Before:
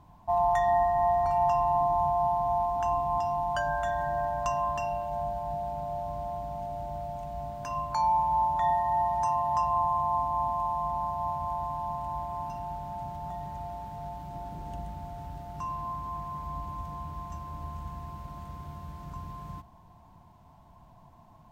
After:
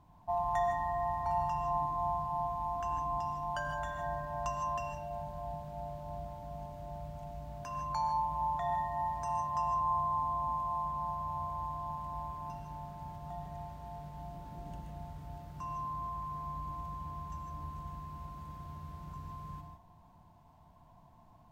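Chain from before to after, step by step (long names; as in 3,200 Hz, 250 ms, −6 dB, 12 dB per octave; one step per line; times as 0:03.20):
reverb whose tail is shaped and stops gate 180 ms rising, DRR 4.5 dB
level −6.5 dB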